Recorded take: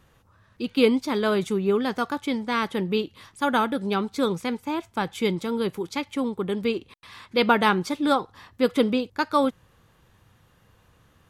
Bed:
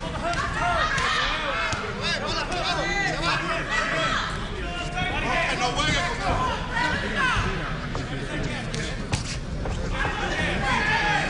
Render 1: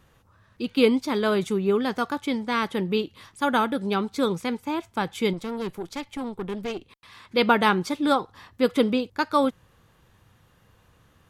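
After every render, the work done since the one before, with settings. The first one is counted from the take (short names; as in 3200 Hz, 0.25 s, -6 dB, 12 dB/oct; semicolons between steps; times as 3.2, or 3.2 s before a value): 5.33–7.25 tube stage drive 25 dB, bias 0.65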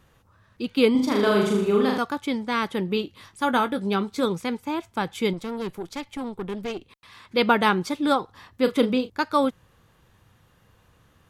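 0.91–1.98 flutter echo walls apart 6.7 m, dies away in 0.75 s; 2.86–4.26 doubler 20 ms -11 dB; 8.62–9.1 doubler 35 ms -10.5 dB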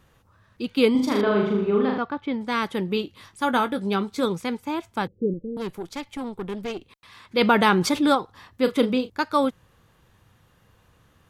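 1.21–2.41 air absorption 320 m; 5.07–5.57 steep low-pass 550 Hz 72 dB/oct; 7.41–8.15 fast leveller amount 50%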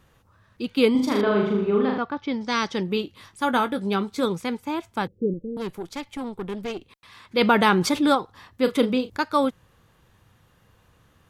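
2.16–2.83 synth low-pass 5600 Hz, resonance Q 5.1; 8.75–9.17 upward compressor, threshold -28 dBFS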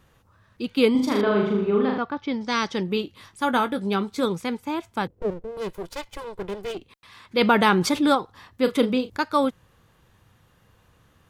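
5.1–6.75 minimum comb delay 2 ms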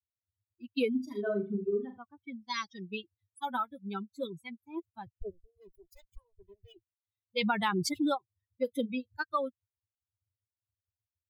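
per-bin expansion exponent 3; compressor 3:1, threshold -28 dBFS, peak gain reduction 9 dB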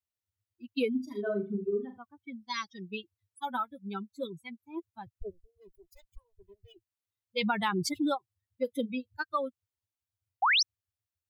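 10.42–10.63 painted sound rise 690–6200 Hz -24 dBFS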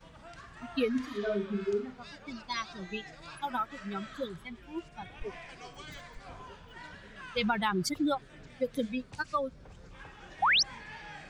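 add bed -23.5 dB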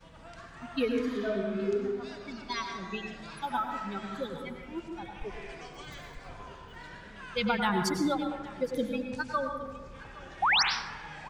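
echo 0.817 s -20.5 dB; plate-style reverb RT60 1.2 s, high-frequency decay 0.4×, pre-delay 85 ms, DRR 3.5 dB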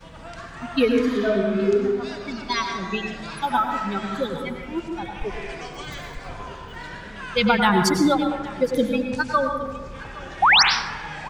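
gain +10 dB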